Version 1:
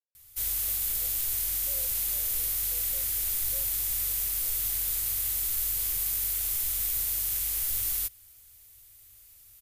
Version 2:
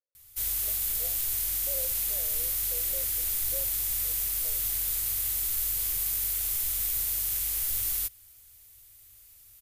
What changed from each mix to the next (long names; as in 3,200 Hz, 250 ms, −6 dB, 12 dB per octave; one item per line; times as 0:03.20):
speech +8.5 dB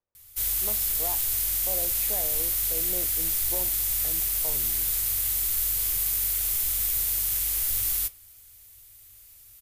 speech: remove formant filter e
reverb: on, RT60 0.35 s